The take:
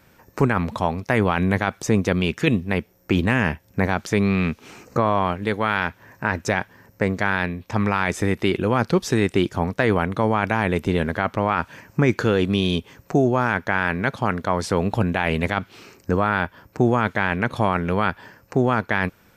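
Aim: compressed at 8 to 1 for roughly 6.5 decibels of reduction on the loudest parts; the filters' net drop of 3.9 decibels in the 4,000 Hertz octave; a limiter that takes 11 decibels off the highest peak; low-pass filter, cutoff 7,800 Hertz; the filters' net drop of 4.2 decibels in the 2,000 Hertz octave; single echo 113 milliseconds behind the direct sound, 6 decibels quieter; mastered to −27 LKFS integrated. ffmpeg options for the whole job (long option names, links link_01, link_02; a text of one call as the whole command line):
ffmpeg -i in.wav -af "lowpass=7800,equalizer=frequency=2000:width_type=o:gain=-5,equalizer=frequency=4000:width_type=o:gain=-3,acompressor=threshold=-20dB:ratio=8,alimiter=limit=-19dB:level=0:latency=1,aecho=1:1:113:0.501,volume=4dB" out.wav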